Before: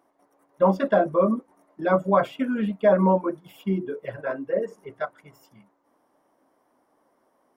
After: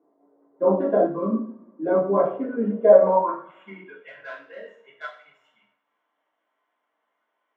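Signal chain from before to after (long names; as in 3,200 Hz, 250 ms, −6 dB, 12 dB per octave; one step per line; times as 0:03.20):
adaptive Wiener filter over 9 samples
coupled-rooms reverb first 0.48 s, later 1.8 s, from −24 dB, DRR −9 dB
band-pass filter sweep 390 Hz → 3,100 Hz, 0:02.71–0:04.09
0:01.06–0:01.86: flat-topped bell 530 Hz −10.5 dB 1.3 octaves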